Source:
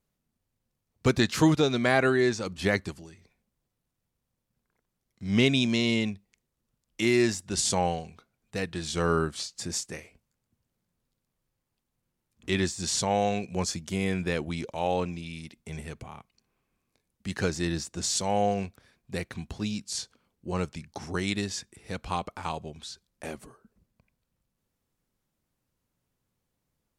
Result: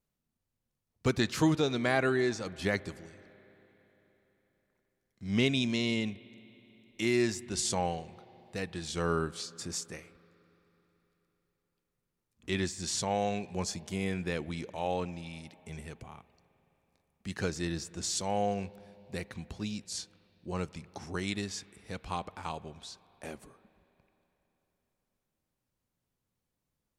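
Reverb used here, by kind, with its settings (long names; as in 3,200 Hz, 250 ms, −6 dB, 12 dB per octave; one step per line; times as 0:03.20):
spring reverb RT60 3.9 s, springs 41/54 ms, chirp 70 ms, DRR 19 dB
level −5 dB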